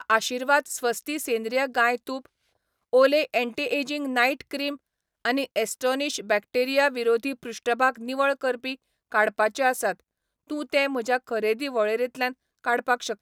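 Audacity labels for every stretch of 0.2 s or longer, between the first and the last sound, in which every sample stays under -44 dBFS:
2.260000	2.930000	silence
4.760000	5.250000	silence
8.750000	9.120000	silence
10.000000	10.500000	silence
12.330000	12.640000	silence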